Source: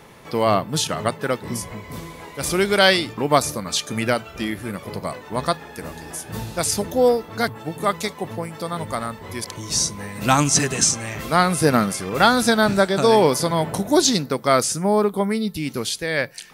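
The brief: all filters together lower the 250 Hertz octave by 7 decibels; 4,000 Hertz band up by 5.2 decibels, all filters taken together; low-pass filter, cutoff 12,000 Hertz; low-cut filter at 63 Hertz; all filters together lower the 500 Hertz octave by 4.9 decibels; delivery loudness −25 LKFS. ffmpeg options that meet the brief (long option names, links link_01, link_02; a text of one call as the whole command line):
ffmpeg -i in.wav -af "highpass=63,lowpass=12000,equalizer=frequency=250:width_type=o:gain=-8.5,equalizer=frequency=500:width_type=o:gain=-4,equalizer=frequency=4000:width_type=o:gain=6.5,volume=-4.5dB" out.wav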